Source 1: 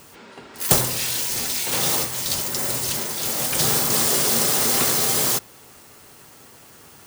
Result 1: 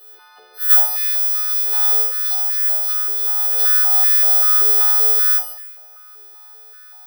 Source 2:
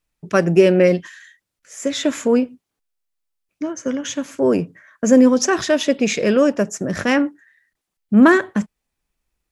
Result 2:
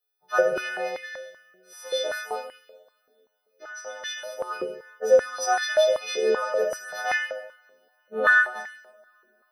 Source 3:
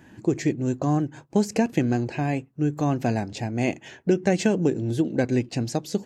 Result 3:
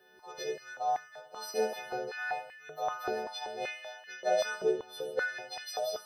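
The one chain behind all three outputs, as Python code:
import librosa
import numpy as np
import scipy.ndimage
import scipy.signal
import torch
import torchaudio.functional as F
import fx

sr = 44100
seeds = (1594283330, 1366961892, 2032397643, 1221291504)

y = fx.freq_snap(x, sr, grid_st=3)
y = fx.fixed_phaser(y, sr, hz=1500.0, stages=8)
y = fx.dynamic_eq(y, sr, hz=4000.0, q=1.2, threshold_db=-31.0, ratio=4.0, max_db=-5)
y = fx.rev_double_slope(y, sr, seeds[0], early_s=0.74, late_s=3.1, knee_db=-27, drr_db=0.5)
y = fx.filter_held_highpass(y, sr, hz=5.2, low_hz=380.0, high_hz=1900.0)
y = y * librosa.db_to_amplitude(-10.0)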